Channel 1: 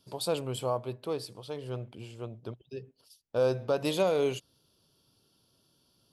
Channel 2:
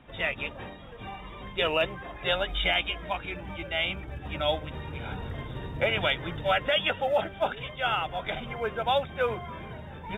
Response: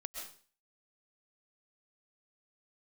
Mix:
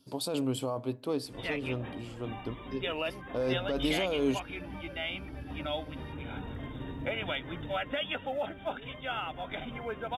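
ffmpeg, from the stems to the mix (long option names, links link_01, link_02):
-filter_complex "[0:a]alimiter=level_in=0.5dB:limit=-24dB:level=0:latency=1:release=10,volume=-0.5dB,volume=0dB[link_01];[1:a]acompressor=threshold=-34dB:ratio=1.5,adelay=1250,volume=-4dB[link_02];[link_01][link_02]amix=inputs=2:normalize=0,equalizer=frequency=270:width_type=o:width=0.3:gain=13"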